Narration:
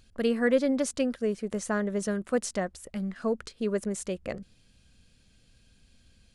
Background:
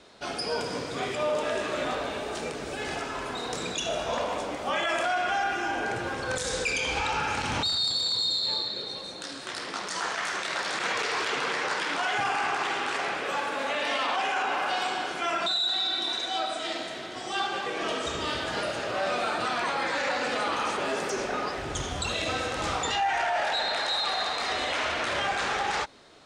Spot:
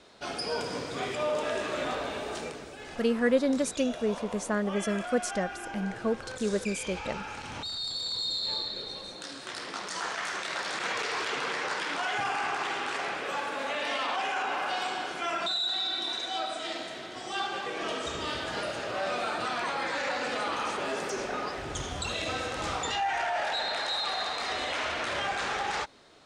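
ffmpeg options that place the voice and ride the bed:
-filter_complex "[0:a]adelay=2800,volume=0.944[s0];[1:a]volume=1.88,afade=t=out:st=2.34:d=0.39:silence=0.375837,afade=t=in:st=7.54:d=1.04:silence=0.421697[s1];[s0][s1]amix=inputs=2:normalize=0"

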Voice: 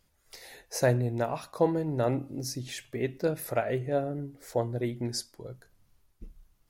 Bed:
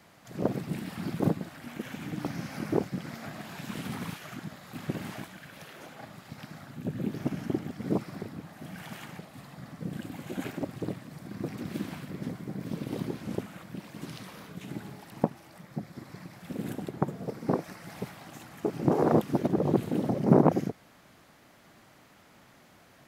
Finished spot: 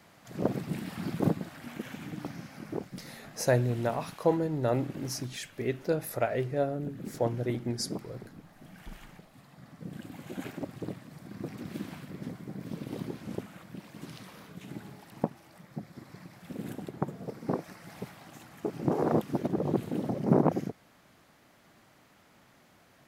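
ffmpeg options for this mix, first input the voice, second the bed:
-filter_complex "[0:a]adelay=2650,volume=0.944[s0];[1:a]volume=1.68,afade=t=out:st=1.69:d=0.86:silence=0.398107,afade=t=in:st=9.45:d=0.81:silence=0.562341[s1];[s0][s1]amix=inputs=2:normalize=0"

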